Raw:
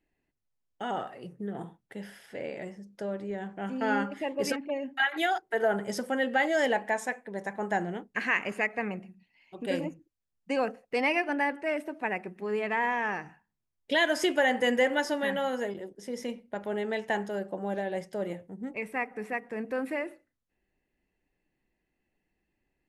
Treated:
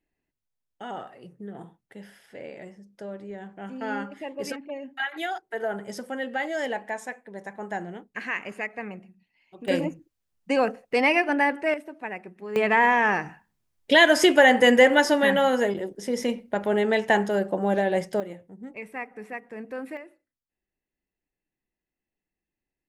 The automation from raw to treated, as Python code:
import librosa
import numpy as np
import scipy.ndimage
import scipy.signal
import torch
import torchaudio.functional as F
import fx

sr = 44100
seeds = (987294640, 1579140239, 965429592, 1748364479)

y = fx.gain(x, sr, db=fx.steps((0.0, -3.0), (9.68, 6.0), (11.74, -3.0), (12.56, 9.0), (18.2, -3.0), (19.97, -10.0)))